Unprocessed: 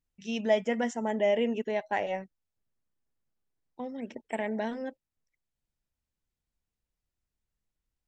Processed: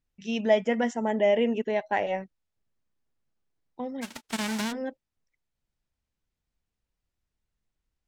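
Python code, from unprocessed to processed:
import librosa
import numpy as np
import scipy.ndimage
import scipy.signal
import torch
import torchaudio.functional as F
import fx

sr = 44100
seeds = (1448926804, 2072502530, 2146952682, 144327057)

y = fx.envelope_flatten(x, sr, power=0.1, at=(4.01, 4.71), fade=0.02)
y = fx.air_absorb(y, sr, metres=52.0)
y = y * 10.0 ** (3.5 / 20.0)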